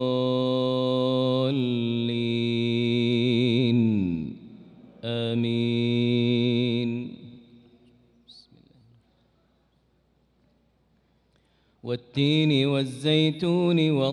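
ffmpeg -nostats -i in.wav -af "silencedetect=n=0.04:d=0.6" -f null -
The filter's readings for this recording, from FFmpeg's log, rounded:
silence_start: 4.31
silence_end: 5.04 | silence_duration: 0.72
silence_start: 7.07
silence_end: 11.85 | silence_duration: 4.78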